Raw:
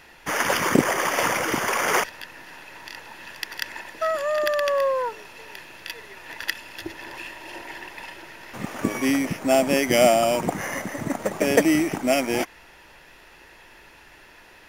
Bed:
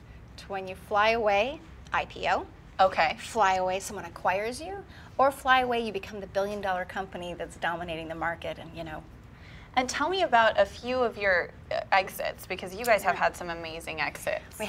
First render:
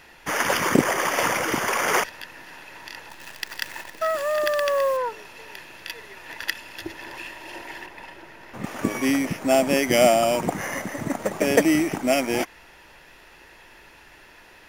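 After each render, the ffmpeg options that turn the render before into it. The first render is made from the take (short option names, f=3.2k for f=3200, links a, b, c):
-filter_complex "[0:a]asettb=1/sr,asplit=3[a][b][c];[a]atrim=end=3.094[d];[b]atrim=start=3.09:end=4.97,asetpts=PTS-STARTPTS,afade=t=in:d=0.004:c=qsin,afade=t=out:st=1.876:d=0.004:c=qsin,acrusher=bits=7:dc=4:mix=0:aa=0.000001[e];[c]atrim=start=4.966[f];[d][e]acrossfade=d=0.004:c1=hsin:c2=qsin[g];[g][f]acrossfade=d=0.004:c1=qsin:c2=hsin,asettb=1/sr,asplit=3[h][i][j];[h]atrim=end=7.864[k];[i]atrim=start=7.86:end=8.64,asetpts=PTS-STARTPTS,afade=t=in:d=0.004:c=qsin,afade=t=out:st=0.776:d=0.004:c=qsin,highshelf=f=2.1k:g=-8[l];[j]atrim=start=8.636[m];[k][l]acrossfade=d=0.004:c1=hsin:c2=qsin[n];[n][m]acrossfade=d=0.004:c1=qsin:c2=hsin"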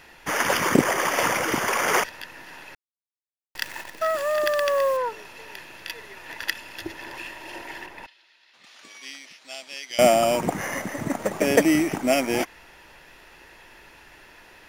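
-filter_complex "[0:a]asettb=1/sr,asplit=3[a][b][c];[a]atrim=end=8.064[d];[b]atrim=start=8.06:end=9.99,asetpts=PTS-STARTPTS,afade=t=in:d=0.004:c=qsin,afade=t=out:st=1.926:d=0.004:c=qsin,bandpass=f=4k:t=q:w=2.9[e];[c]atrim=start=9.986[f];[d][e]acrossfade=d=0.004:c1=hsin:c2=qsin[g];[g][f]acrossfade=d=0.004:c1=qsin:c2=hsin,asplit=3[h][i][j];[h]atrim=end=2.75,asetpts=PTS-STARTPTS,afade=t=out:st=2.746:d=0.004:c=hsin[k];[i]atrim=start=2.75:end=3.55,asetpts=PTS-STARTPTS,volume=0[l];[j]atrim=start=3.55,asetpts=PTS-STARTPTS,afade=t=in:d=0.004:c=hsin[m];[k][l][m]concat=n=3:v=0:a=1"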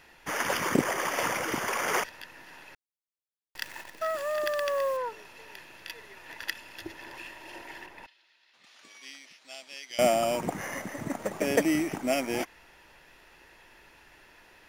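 -af "volume=-6.5dB"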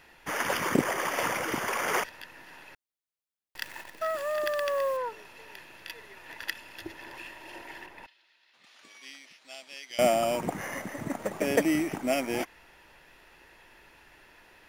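-af "equalizer=f=6k:w=1.5:g=-2.5"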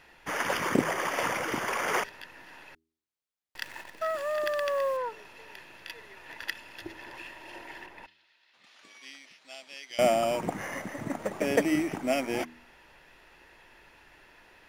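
-af "highshelf=f=9.8k:g=-7,bandreject=f=80.73:t=h:w=4,bandreject=f=161.46:t=h:w=4,bandreject=f=242.19:t=h:w=4,bandreject=f=322.92:t=h:w=4,bandreject=f=403.65:t=h:w=4"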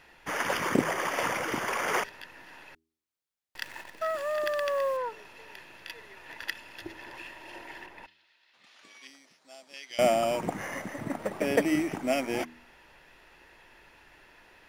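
-filter_complex "[0:a]asettb=1/sr,asplit=3[a][b][c];[a]atrim=end=9.074[d];[b]atrim=start=9.07:end=9.74,asetpts=PTS-STARTPTS,afade=t=in:d=0.004:c=qsin,afade=t=out:st=0.666:d=0.004:c=qsin,equalizer=f=2.7k:w=0.9:g=-11.5[e];[c]atrim=start=9.736[f];[d][e]acrossfade=d=0.004:c1=hsin:c2=qsin[g];[g][f]acrossfade=d=0.004:c1=qsin:c2=hsin,asettb=1/sr,asplit=3[h][i][j];[h]atrim=end=10.984[k];[i]atrim=start=10.98:end=11.66,asetpts=PTS-STARTPTS,afade=t=in:d=0.004:c=qsin,afade=t=out:st=0.676:d=0.004:c=qsin,equalizer=f=6.7k:t=o:w=0.22:g=-8[l];[j]atrim=start=11.656[m];[k][l]acrossfade=d=0.004:c1=hsin:c2=qsin[n];[n][m]acrossfade=d=0.004:c1=qsin:c2=hsin"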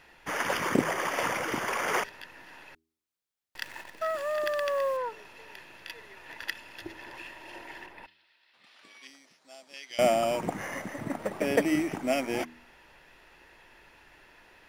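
-filter_complex "[0:a]asettb=1/sr,asplit=3[a][b][c];[a]atrim=end=7.924[d];[b]atrim=start=7.92:end=9.03,asetpts=PTS-STARTPTS,afade=t=in:d=0.004:c=qsin,afade=t=out:st=1.106:d=0.004:c=qsin,equalizer=f=6.5k:w=4.8:g=-9[e];[c]atrim=start=9.026[f];[d][e]acrossfade=d=0.004:c1=hsin:c2=qsin[g];[g][f]acrossfade=d=0.004:c1=qsin:c2=hsin"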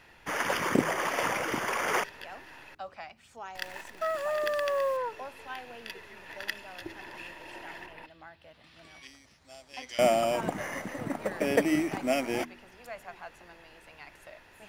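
-filter_complex "[1:a]volume=-19.5dB[a];[0:a][a]amix=inputs=2:normalize=0"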